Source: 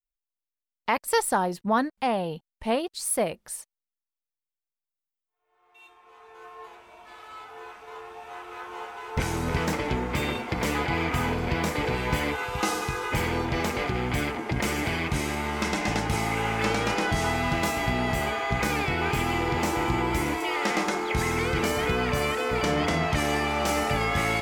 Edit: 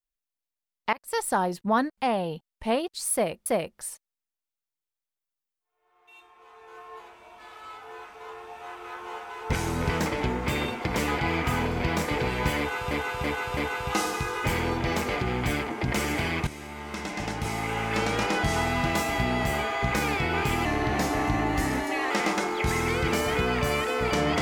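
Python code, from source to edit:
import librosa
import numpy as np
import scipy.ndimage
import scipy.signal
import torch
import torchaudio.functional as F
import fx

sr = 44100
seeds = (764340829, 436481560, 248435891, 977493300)

y = fx.edit(x, sr, fx.fade_in_from(start_s=0.93, length_s=0.47, floor_db=-21.5),
    fx.repeat(start_s=3.13, length_s=0.33, count=2),
    fx.repeat(start_s=12.25, length_s=0.33, count=4),
    fx.fade_in_from(start_s=15.15, length_s=1.82, floor_db=-13.0),
    fx.speed_span(start_s=19.33, length_s=1.28, speed=0.88), tone=tone)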